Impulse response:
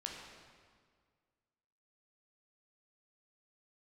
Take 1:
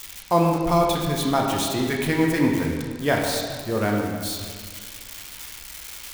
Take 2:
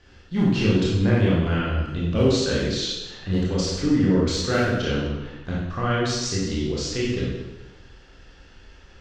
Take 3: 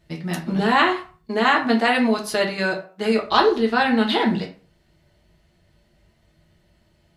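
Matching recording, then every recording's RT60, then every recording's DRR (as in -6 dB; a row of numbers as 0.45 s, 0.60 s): 1; 1.8 s, 1.1 s, 0.45 s; -1.0 dB, -7.0 dB, -0.5 dB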